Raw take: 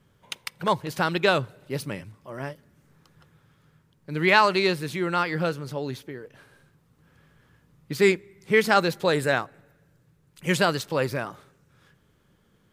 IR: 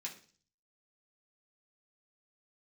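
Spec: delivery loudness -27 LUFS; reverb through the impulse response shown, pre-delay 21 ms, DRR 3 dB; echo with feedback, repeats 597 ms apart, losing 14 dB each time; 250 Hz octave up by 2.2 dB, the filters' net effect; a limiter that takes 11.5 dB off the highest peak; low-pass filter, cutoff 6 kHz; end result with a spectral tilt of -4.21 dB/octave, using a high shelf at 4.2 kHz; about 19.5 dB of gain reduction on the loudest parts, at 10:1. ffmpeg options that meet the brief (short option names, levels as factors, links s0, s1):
-filter_complex "[0:a]lowpass=6000,equalizer=f=250:t=o:g=3.5,highshelf=f=4200:g=6.5,acompressor=threshold=0.0224:ratio=10,alimiter=level_in=1.58:limit=0.0631:level=0:latency=1,volume=0.631,aecho=1:1:597|1194:0.2|0.0399,asplit=2[s0][s1];[1:a]atrim=start_sample=2205,adelay=21[s2];[s1][s2]afir=irnorm=-1:irlink=0,volume=0.841[s3];[s0][s3]amix=inputs=2:normalize=0,volume=4.22"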